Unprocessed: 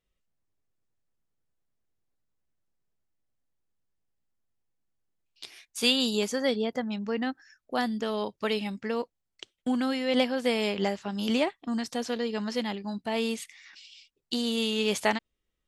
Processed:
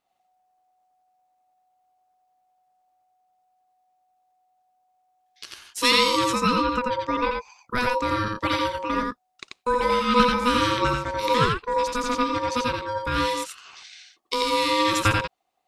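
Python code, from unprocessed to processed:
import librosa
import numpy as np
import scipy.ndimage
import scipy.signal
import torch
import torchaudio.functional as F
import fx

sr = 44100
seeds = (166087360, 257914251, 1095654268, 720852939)

y = x + 10.0 ** (-3.0 / 20.0) * np.pad(x, (int(87 * sr / 1000.0), 0))[:len(x)]
y = y * np.sin(2.0 * np.pi * 740.0 * np.arange(len(y)) / sr)
y = F.gain(torch.from_numpy(y), 7.0).numpy()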